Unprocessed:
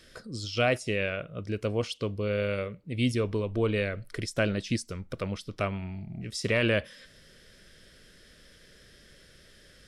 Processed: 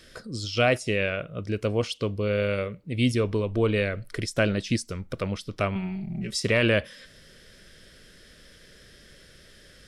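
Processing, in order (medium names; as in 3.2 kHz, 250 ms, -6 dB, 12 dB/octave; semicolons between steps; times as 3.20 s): 5.75–6.40 s: comb 5.2 ms, depth 90%; trim +3.5 dB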